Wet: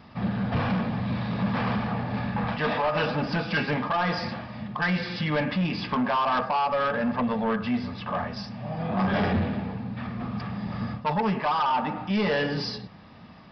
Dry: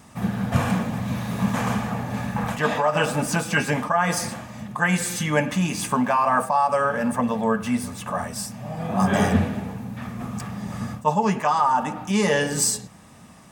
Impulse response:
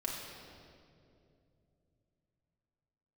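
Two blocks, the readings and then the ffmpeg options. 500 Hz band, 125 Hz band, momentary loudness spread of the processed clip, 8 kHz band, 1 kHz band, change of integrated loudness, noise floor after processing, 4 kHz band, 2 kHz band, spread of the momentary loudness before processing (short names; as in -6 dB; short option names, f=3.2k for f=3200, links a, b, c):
-4.0 dB, -3.0 dB, 9 LU, under -30 dB, -4.0 dB, -4.0 dB, -48 dBFS, -1.5 dB, -3.5 dB, 11 LU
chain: -af "bandreject=f=136.3:t=h:w=4,bandreject=f=272.6:t=h:w=4,bandreject=f=408.9:t=h:w=4,bandreject=f=545.2:t=h:w=4,bandreject=f=681.5:t=h:w=4,bandreject=f=817.8:t=h:w=4,bandreject=f=954.1:t=h:w=4,bandreject=f=1.0904k:t=h:w=4,bandreject=f=1.2267k:t=h:w=4,bandreject=f=1.363k:t=h:w=4,bandreject=f=1.4993k:t=h:w=4,bandreject=f=1.6356k:t=h:w=4,bandreject=f=1.7719k:t=h:w=4,bandreject=f=1.9082k:t=h:w=4,bandreject=f=2.0445k:t=h:w=4,bandreject=f=2.1808k:t=h:w=4,bandreject=f=2.3171k:t=h:w=4,bandreject=f=2.4534k:t=h:w=4,bandreject=f=2.5897k:t=h:w=4,bandreject=f=2.726k:t=h:w=4,bandreject=f=2.8623k:t=h:w=4,bandreject=f=2.9986k:t=h:w=4,aresample=11025,asoftclip=type=tanh:threshold=-20dB,aresample=44100"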